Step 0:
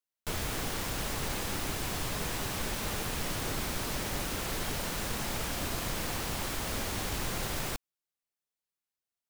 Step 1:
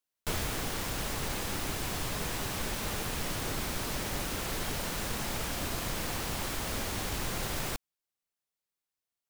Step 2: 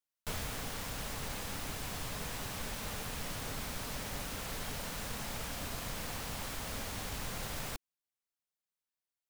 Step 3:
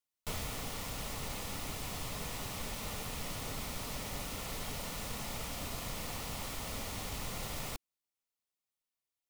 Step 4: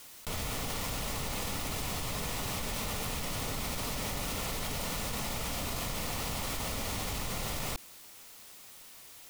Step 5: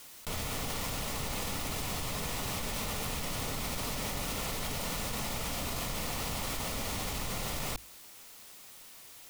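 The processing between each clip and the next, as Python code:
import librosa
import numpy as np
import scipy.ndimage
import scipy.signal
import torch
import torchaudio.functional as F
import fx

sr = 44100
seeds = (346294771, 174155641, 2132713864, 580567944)

y1 = fx.rider(x, sr, range_db=10, speed_s=0.5)
y2 = fx.peak_eq(y1, sr, hz=350.0, db=-10.0, octaves=0.23)
y2 = y2 * 10.0 ** (-5.5 / 20.0)
y3 = fx.notch(y2, sr, hz=1600.0, q=5.6)
y4 = fx.env_flatten(y3, sr, amount_pct=100)
y5 = fx.hum_notches(y4, sr, base_hz=50, count=2)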